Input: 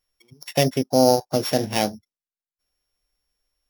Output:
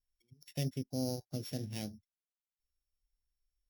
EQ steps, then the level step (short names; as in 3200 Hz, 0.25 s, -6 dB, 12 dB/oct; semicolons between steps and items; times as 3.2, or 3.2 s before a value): passive tone stack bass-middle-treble 10-0-1; +2.5 dB